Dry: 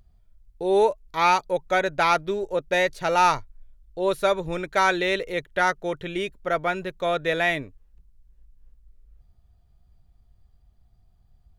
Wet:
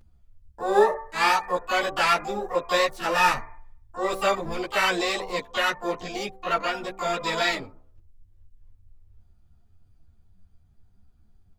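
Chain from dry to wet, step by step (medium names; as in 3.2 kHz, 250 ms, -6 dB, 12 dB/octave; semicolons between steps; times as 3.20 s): de-hum 63.99 Hz, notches 19; harmony voices +5 st -9 dB, +12 st -4 dB; three-phase chorus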